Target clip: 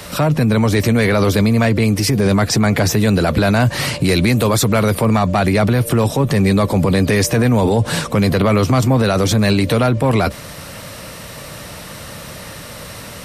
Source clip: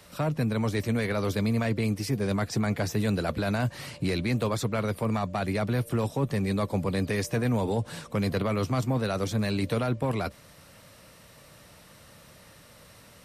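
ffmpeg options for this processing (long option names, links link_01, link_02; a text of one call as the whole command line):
ffmpeg -i in.wav -filter_complex "[0:a]asettb=1/sr,asplit=3[link_01][link_02][link_03];[link_01]atrim=end=4.024[link_04];[link_02]atrim=start=4.02:end=4.95,asetpts=PTS-STARTPTS,afade=type=in:duration=0.004:curve=qsin,afade=type=out:start_time=0.926:duration=0.004:curve=qsin,highshelf=frequency=9000:gain=11[link_05];[link_03]atrim=start=4.946[link_06];[link_04][link_05]acrossfade=duration=0.004:curve1=hsin:curve2=qsin[link_07];[link_07][link_06]acrossfade=duration=0.004:curve1=qsin:curve2=hsin,alimiter=level_in=26dB:limit=-1dB:release=50:level=0:latency=1,volume=-6dB" out.wav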